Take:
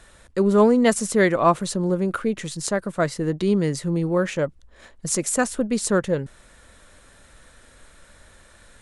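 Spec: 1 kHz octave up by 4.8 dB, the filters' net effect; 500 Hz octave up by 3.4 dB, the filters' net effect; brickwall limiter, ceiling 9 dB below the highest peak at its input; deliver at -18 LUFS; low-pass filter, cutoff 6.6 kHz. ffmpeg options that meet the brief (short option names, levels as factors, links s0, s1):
-af "lowpass=6600,equalizer=f=500:t=o:g=3,equalizer=f=1000:t=o:g=5,volume=1.58,alimiter=limit=0.501:level=0:latency=1"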